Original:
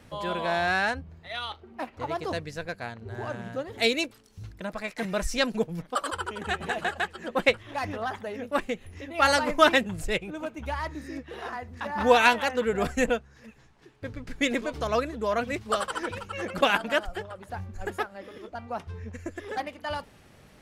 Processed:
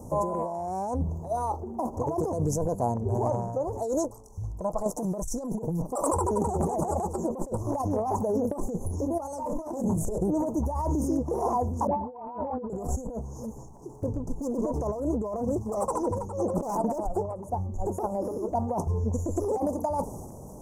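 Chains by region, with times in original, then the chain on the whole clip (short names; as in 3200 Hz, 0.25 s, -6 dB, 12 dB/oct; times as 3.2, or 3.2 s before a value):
3.3–4.86 LPF 2700 Hz 6 dB/oct + bell 250 Hz -13.5 dB 1.8 oct
9.4–10.18 notches 50/100/150/200/250/300/350/400/450 Hz + gate with hold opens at -25 dBFS, closes at -34 dBFS + detuned doubles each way 40 cents
11.87–12.7 steep low-pass 3000 Hz 72 dB/oct + upward compressor, threshold -29 dBFS + dispersion highs, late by 0.145 s, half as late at 1400 Hz
14.06–18 high shelf 5800 Hz -7.5 dB + hard clip -22.5 dBFS + upward expander, over -38 dBFS
whole clip: Chebyshev band-stop 980–6200 Hz, order 4; transient shaper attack +1 dB, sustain +6 dB; negative-ratio compressor -36 dBFS, ratio -1; gain +7 dB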